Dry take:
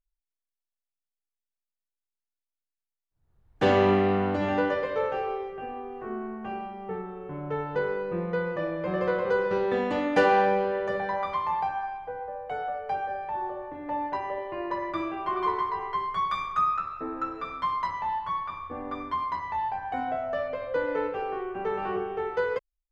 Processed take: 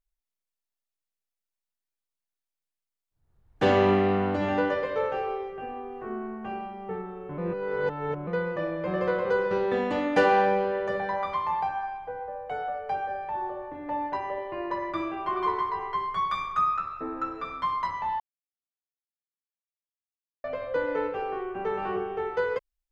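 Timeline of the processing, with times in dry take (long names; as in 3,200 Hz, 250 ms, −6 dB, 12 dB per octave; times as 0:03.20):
0:07.38–0:08.27: reverse
0:18.20–0:20.44: silence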